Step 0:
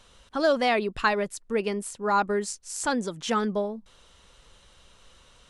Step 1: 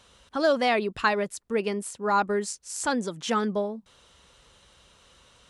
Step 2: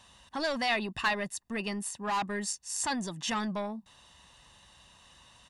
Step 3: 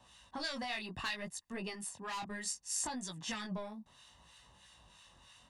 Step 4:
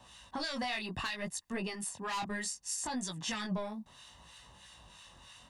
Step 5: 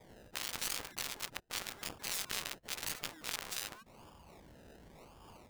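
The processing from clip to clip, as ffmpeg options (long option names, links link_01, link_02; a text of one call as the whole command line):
ffmpeg -i in.wav -af "highpass=53" out.wav
ffmpeg -i in.wav -filter_complex "[0:a]lowshelf=frequency=80:gain=-7.5,aecho=1:1:1.1:0.66,acrossover=split=1700[link_01][link_02];[link_01]asoftclip=type=tanh:threshold=-28.5dB[link_03];[link_03][link_02]amix=inputs=2:normalize=0,volume=-1.5dB" out.wav
ffmpeg -i in.wav -filter_complex "[0:a]acrossover=split=1200[link_01][link_02];[link_01]aeval=exprs='val(0)*(1-0.7/2+0.7/2*cos(2*PI*3.1*n/s))':channel_layout=same[link_03];[link_02]aeval=exprs='val(0)*(1-0.7/2-0.7/2*cos(2*PI*3.1*n/s))':channel_layout=same[link_04];[link_03][link_04]amix=inputs=2:normalize=0,flanger=delay=16:depth=7.5:speed=0.66,acrossover=split=140|3000[link_05][link_06][link_07];[link_06]acompressor=threshold=-42dB:ratio=6[link_08];[link_05][link_08][link_07]amix=inputs=3:normalize=0,volume=2.5dB" out.wav
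ffmpeg -i in.wav -af "alimiter=level_in=8dB:limit=-24dB:level=0:latency=1:release=160,volume=-8dB,volume=5.5dB" out.wav
ffmpeg -i in.wav -af "acrusher=samples=31:mix=1:aa=0.000001:lfo=1:lforange=18.6:lforate=0.91,afftfilt=real='re*lt(hypot(re,im),0.0282)':imag='im*lt(hypot(re,im),0.0282)':win_size=1024:overlap=0.75,aeval=exprs='0.0376*(cos(1*acos(clip(val(0)/0.0376,-1,1)))-cos(1*PI/2))+0.0119*(cos(2*acos(clip(val(0)/0.0376,-1,1)))-cos(2*PI/2))+0.00168*(cos(4*acos(clip(val(0)/0.0376,-1,1)))-cos(4*PI/2))+0.0075*(cos(7*acos(clip(val(0)/0.0376,-1,1)))-cos(7*PI/2))':channel_layout=same,volume=8.5dB" out.wav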